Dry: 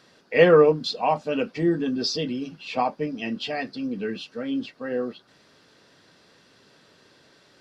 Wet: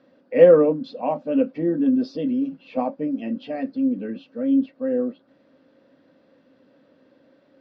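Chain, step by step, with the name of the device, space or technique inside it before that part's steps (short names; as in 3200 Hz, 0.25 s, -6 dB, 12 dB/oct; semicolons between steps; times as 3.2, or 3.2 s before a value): inside a cardboard box (LPF 2800 Hz 12 dB/oct; small resonant body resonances 270/530 Hz, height 18 dB, ringing for 45 ms); gain -9 dB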